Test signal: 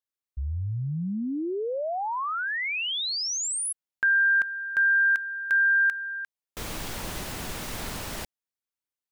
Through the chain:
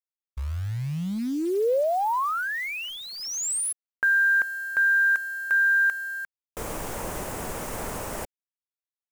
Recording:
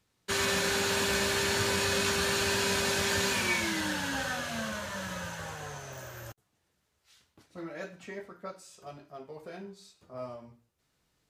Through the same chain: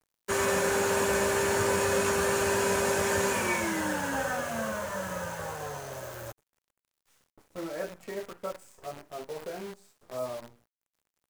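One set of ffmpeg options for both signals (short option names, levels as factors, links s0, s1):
-af "equalizer=f=500:t=o:w=1:g=7,equalizer=f=1000:t=o:w=1:g=4,equalizer=f=4000:t=o:w=1:g=-11,equalizer=f=8000:t=o:w=1:g=4,acrusher=bits=8:dc=4:mix=0:aa=0.000001"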